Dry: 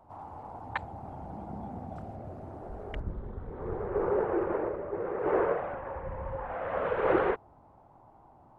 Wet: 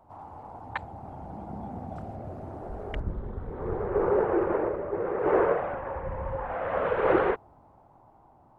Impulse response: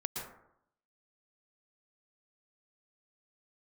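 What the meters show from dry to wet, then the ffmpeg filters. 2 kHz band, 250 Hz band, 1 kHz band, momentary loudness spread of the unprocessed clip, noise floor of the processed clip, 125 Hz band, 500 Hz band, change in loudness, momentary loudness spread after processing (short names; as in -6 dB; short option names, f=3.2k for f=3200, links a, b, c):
+3.0 dB, +3.5 dB, +3.5 dB, 15 LU, -58 dBFS, +3.5 dB, +3.5 dB, +4.0 dB, 17 LU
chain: -af "dynaudnorm=f=480:g=7:m=4dB"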